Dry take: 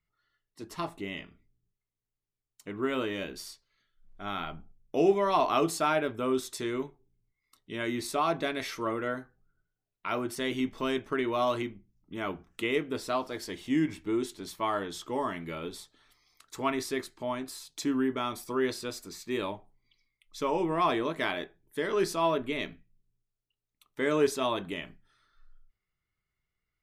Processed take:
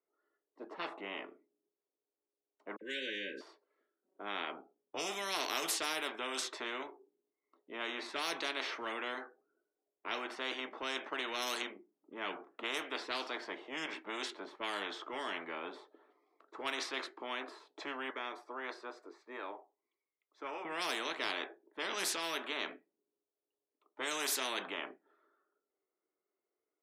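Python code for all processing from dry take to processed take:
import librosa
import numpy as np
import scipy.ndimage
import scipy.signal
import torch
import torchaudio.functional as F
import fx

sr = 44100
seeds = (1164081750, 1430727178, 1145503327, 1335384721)

y = fx.chain(x, sr, fx.brickwall_bandstop(low_hz=570.0, high_hz=1500.0),
    fx.dispersion(late='lows', ms=54.0, hz=2600.0), at=(2.76, 3.41))
y = fx.chain(y, sr, fx.highpass(hz=1300.0, slope=6),
    fx.peak_eq(hz=2900.0, db=-7.5, octaves=0.75), at=(18.1, 20.65))
y = scipy.signal.sosfilt(scipy.signal.butter(6, 330.0, 'highpass', fs=sr, output='sos'), y)
y = fx.env_lowpass(y, sr, base_hz=500.0, full_db=-23.5)
y = fx.spectral_comp(y, sr, ratio=4.0)
y = y * librosa.db_to_amplitude(-6.5)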